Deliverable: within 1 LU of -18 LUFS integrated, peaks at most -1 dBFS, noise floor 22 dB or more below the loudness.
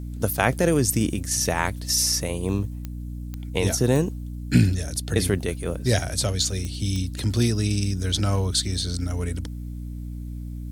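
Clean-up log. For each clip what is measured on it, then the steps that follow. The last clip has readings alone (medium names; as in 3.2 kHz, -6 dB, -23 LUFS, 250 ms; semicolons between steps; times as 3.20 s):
clicks found 5; hum 60 Hz; highest harmonic 300 Hz; hum level -31 dBFS; loudness -24.0 LUFS; peak level -4.0 dBFS; loudness target -18.0 LUFS
-> de-click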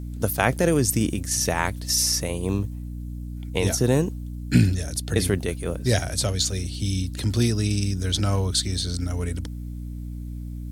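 clicks found 0; hum 60 Hz; highest harmonic 300 Hz; hum level -31 dBFS
-> de-hum 60 Hz, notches 5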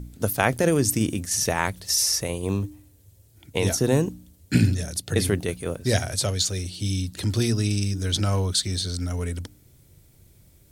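hum not found; loudness -24.5 LUFS; peak level -4.0 dBFS; loudness target -18.0 LUFS
-> trim +6.5 dB; peak limiter -1 dBFS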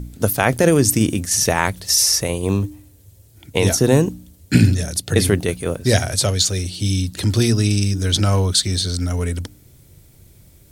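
loudness -18.0 LUFS; peak level -1.0 dBFS; noise floor -49 dBFS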